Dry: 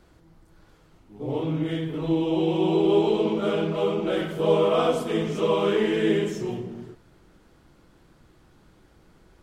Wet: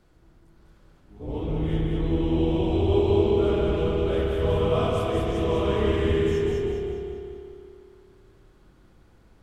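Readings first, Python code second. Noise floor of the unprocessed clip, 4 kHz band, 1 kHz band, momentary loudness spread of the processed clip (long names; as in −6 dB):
−58 dBFS, −2.5 dB, −2.5 dB, 13 LU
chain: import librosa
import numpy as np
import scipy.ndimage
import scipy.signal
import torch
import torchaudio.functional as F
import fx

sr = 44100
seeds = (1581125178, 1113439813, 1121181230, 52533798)

p1 = fx.octave_divider(x, sr, octaves=2, level_db=3.0)
p2 = p1 + fx.echo_feedback(p1, sr, ms=201, feedback_pct=46, wet_db=-3.0, dry=0)
p3 = fx.rev_spring(p2, sr, rt60_s=2.5, pass_ms=(57,), chirp_ms=30, drr_db=3.5)
y = p3 * 10.0 ** (-6.0 / 20.0)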